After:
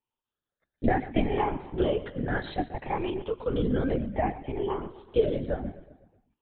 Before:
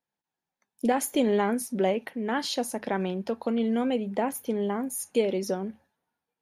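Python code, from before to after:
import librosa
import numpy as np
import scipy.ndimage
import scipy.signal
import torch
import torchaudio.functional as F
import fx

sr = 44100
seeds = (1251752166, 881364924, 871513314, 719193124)

y = fx.spec_ripple(x, sr, per_octave=0.68, drift_hz=0.64, depth_db=13)
y = fx.echo_feedback(y, sr, ms=126, feedback_pct=51, wet_db=-15.0)
y = fx.lpc_vocoder(y, sr, seeds[0], excitation='whisper', order=16)
y = y * librosa.db_to_amplitude(-3.5)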